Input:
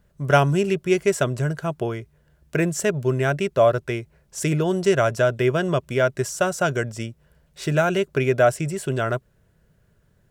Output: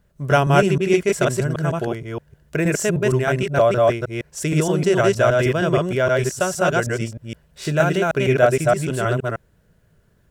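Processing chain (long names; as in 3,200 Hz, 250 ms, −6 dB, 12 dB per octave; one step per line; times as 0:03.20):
delay that plays each chunk backwards 156 ms, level 0 dB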